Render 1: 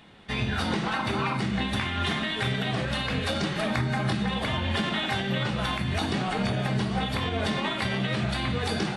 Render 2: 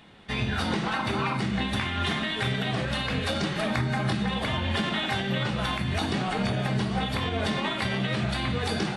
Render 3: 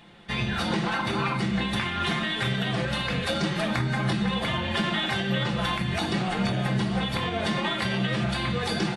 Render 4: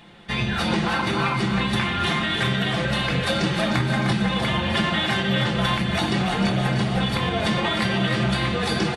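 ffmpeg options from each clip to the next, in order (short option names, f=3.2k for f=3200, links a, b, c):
-af anull
-af "aecho=1:1:5.8:0.47"
-af "aecho=1:1:305|610|915|1220|1525|1830:0.398|0.207|0.108|0.056|0.0291|0.0151,volume=3.5dB"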